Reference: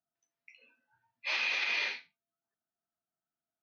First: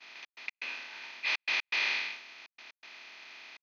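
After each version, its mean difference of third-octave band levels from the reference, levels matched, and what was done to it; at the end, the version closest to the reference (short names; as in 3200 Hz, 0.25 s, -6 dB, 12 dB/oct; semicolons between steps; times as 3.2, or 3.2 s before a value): 8.0 dB: per-bin compression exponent 0.2; expander -36 dBFS; bell 530 Hz -7 dB 0.58 oct; step gate "xx.x.xxxx" 122 bpm -60 dB; gain -1.5 dB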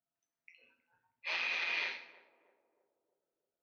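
2.0 dB: AM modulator 170 Hz, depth 35%; high shelf 4400 Hz -8.5 dB; on a send: narrowing echo 0.317 s, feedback 57%, band-pass 410 Hz, level -14.5 dB; on the sum: non-linear reverb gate 0.24 s falling, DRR 10 dB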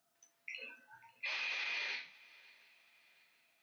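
4.0 dB: low shelf 240 Hz -9 dB; compressor, threshold -46 dBFS, peak gain reduction 16 dB; limiter -46 dBFS, peak gain reduction 11.5 dB; swung echo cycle 0.724 s, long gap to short 3:1, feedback 43%, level -23 dB; gain +15 dB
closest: second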